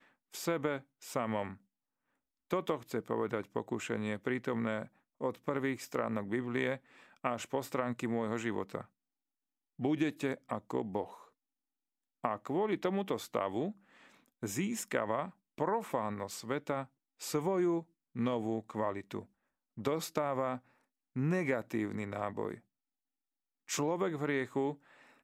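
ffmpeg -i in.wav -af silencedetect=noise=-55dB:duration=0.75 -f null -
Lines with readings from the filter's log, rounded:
silence_start: 1.57
silence_end: 2.50 | silence_duration: 0.93
silence_start: 8.86
silence_end: 9.79 | silence_duration: 0.93
silence_start: 11.28
silence_end: 12.24 | silence_duration: 0.95
silence_start: 22.60
silence_end: 23.68 | silence_duration: 1.09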